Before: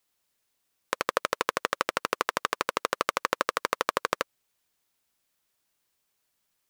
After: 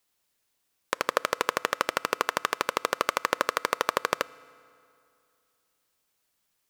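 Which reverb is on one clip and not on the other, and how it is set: FDN reverb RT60 2.6 s, high-frequency decay 0.7×, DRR 20 dB; gain +1 dB

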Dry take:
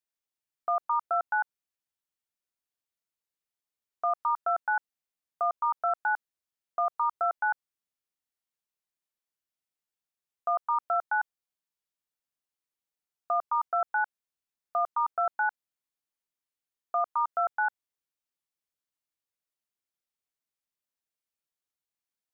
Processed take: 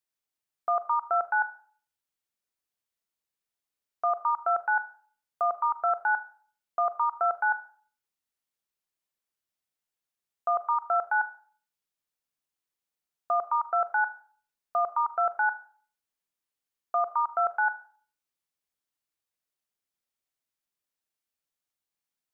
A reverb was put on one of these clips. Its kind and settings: Schroeder reverb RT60 0.48 s, combs from 30 ms, DRR 12.5 dB; gain +1.5 dB

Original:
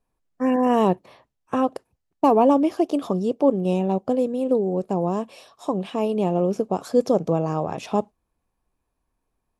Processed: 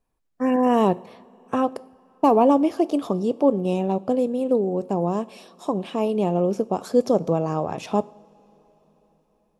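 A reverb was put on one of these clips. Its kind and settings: two-slope reverb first 0.59 s, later 4.8 s, from -18 dB, DRR 17.5 dB

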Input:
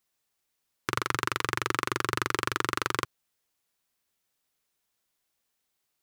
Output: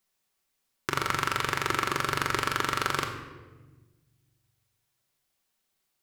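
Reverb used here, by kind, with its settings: shoebox room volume 840 m³, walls mixed, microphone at 1.1 m

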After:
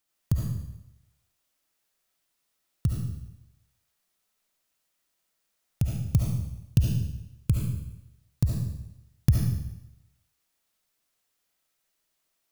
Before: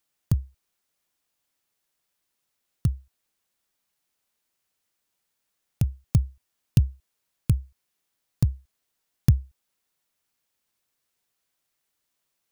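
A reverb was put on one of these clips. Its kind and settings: digital reverb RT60 0.87 s, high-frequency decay 1×, pre-delay 30 ms, DRR -2 dB; gain -2.5 dB

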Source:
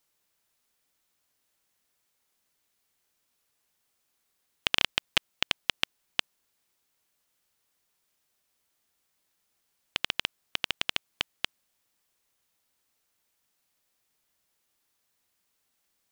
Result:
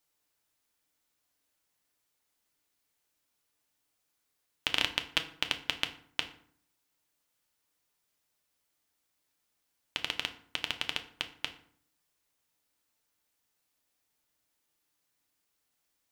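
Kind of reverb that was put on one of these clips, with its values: FDN reverb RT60 0.58 s, low-frequency decay 1.3×, high-frequency decay 0.65×, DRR 6 dB; gain -4 dB

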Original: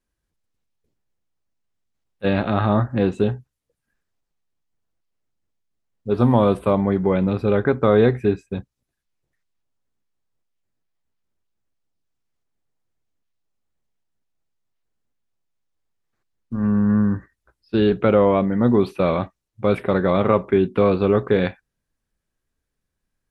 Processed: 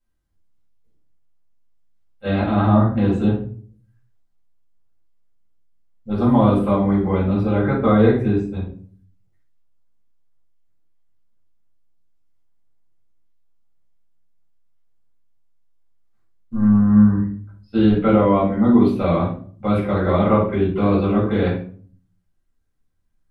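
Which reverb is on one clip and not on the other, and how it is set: shoebox room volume 400 m³, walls furnished, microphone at 7.1 m; gain -11 dB

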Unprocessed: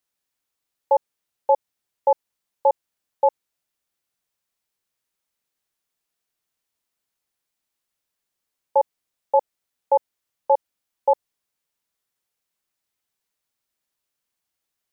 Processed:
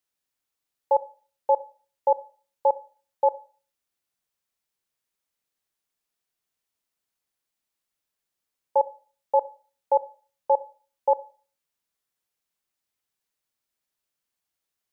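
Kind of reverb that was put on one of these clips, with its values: Schroeder reverb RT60 0.4 s, combs from 29 ms, DRR 16.5 dB; gain -3 dB

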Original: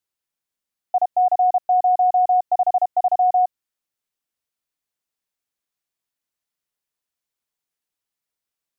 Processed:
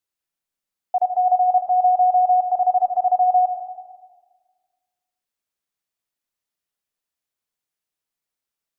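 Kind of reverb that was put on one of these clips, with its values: digital reverb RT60 1.5 s, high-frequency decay 0.4×, pre-delay 60 ms, DRR 6 dB; gain -1.5 dB

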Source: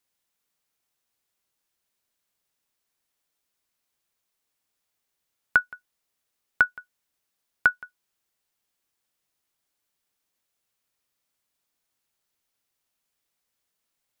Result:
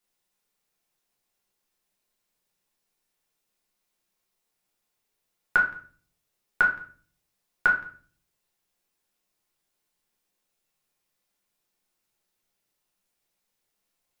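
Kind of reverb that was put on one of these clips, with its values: shoebox room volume 38 m³, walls mixed, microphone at 0.84 m; gain -3.5 dB

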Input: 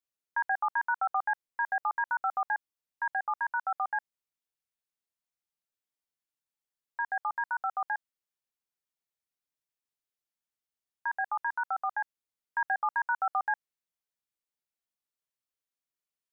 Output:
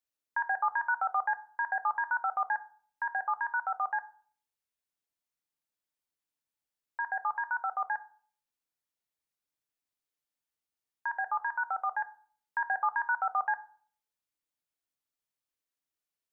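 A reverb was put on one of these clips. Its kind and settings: FDN reverb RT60 0.49 s, low-frequency decay 1.35×, high-frequency decay 0.25×, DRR 11.5 dB

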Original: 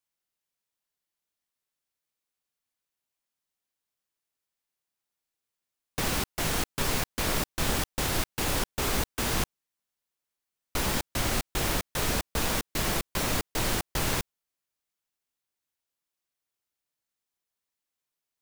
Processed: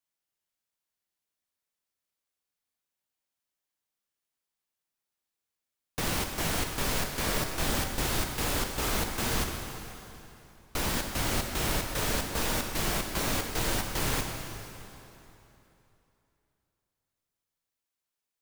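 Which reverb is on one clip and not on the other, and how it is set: plate-style reverb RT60 3.1 s, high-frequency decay 0.85×, DRR 3 dB; gain -2.5 dB

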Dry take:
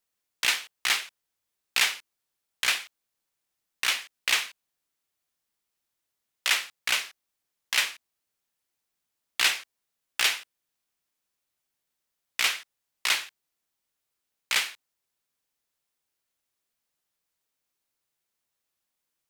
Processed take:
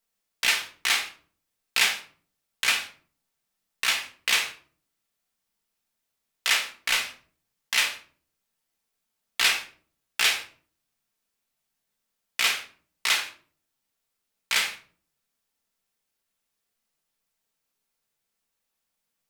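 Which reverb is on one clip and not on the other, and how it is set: shoebox room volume 390 m³, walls furnished, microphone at 1.6 m

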